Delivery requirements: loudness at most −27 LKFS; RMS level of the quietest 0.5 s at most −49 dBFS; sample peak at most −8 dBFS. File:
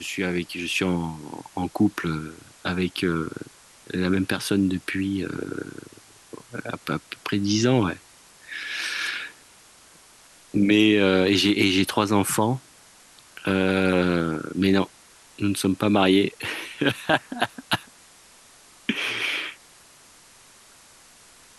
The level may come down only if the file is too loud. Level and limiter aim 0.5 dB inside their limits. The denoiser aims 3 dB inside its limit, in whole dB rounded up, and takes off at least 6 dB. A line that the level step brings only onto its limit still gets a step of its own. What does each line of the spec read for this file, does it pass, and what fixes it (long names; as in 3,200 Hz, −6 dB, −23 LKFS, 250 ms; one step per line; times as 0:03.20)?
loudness −24.0 LKFS: out of spec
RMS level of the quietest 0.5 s −52 dBFS: in spec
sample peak −5.0 dBFS: out of spec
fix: level −3.5 dB